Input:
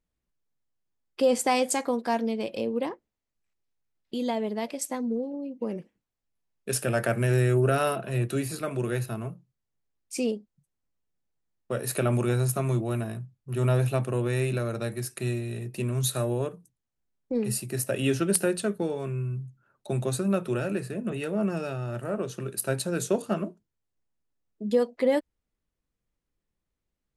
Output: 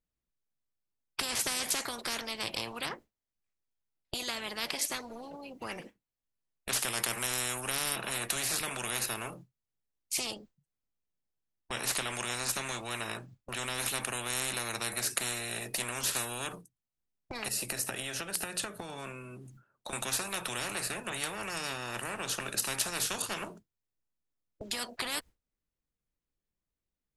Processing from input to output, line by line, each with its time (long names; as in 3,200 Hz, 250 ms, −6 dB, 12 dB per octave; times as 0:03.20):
0:10.34–0:13.78: parametric band 11,000 Hz −12.5 dB 0.51 octaves
0:17.48–0:19.93: downward compressor 4 to 1, threshold −38 dBFS
whole clip: noise gate with hold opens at −36 dBFS; every bin compressed towards the loudest bin 10 to 1